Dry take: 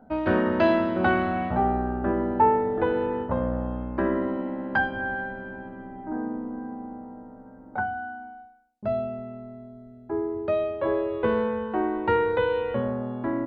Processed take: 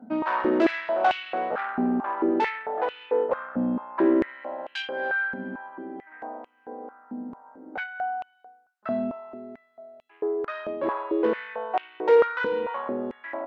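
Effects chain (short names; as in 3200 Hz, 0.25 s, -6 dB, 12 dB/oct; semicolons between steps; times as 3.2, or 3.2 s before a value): tube stage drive 20 dB, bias 0.3; stepped high-pass 4.5 Hz 230–2800 Hz; gain -1 dB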